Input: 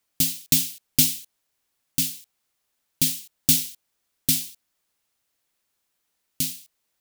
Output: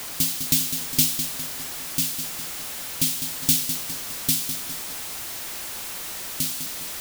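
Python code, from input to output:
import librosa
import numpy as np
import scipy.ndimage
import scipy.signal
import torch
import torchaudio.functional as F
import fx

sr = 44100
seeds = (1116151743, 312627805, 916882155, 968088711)

p1 = x + 0.5 * 10.0 ** (-25.5 / 20.0) * np.sign(x)
p2 = p1 + fx.echo_feedback(p1, sr, ms=204, feedback_pct=51, wet_db=-9, dry=0)
y = F.gain(torch.from_numpy(p2), -2.5).numpy()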